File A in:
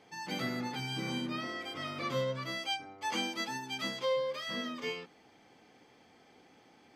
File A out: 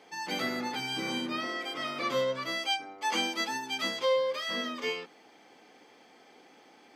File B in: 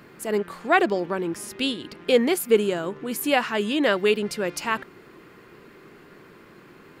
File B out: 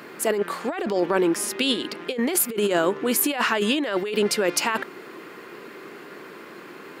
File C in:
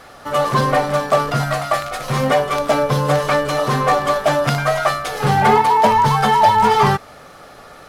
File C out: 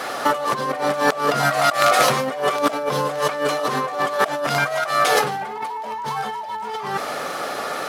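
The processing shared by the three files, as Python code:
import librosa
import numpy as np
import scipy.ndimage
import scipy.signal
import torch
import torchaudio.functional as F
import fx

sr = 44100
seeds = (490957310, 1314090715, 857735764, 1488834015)

y = scipy.signal.sosfilt(scipy.signal.butter(2, 270.0, 'highpass', fs=sr, output='sos'), x)
y = fx.over_compress(y, sr, threshold_db=-28.0, ratio=-1.0)
y = y * 10.0 ** (5.0 / 20.0)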